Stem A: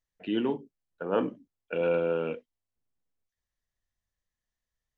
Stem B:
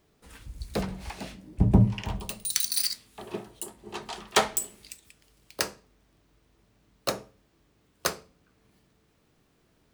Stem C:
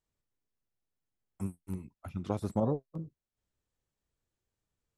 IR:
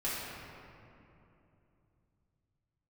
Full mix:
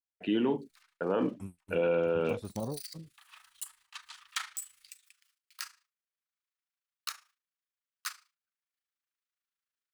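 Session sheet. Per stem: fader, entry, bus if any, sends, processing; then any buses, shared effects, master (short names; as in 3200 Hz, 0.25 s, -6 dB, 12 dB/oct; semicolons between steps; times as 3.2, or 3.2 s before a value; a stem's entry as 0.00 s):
+2.5 dB, 0.00 s, no send, expander -53 dBFS
-11.5 dB, 0.00 s, no send, steep high-pass 1200 Hz 36 dB/oct; AGC gain up to 12.5 dB; AM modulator 27 Hz, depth 55%; auto duck -20 dB, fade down 0.70 s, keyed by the first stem
-7.0 dB, 0.00 s, no send, bell 3300 Hz +9 dB 1.1 oct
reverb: off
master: gate with hold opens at -55 dBFS; limiter -19.5 dBFS, peak gain reduction 8 dB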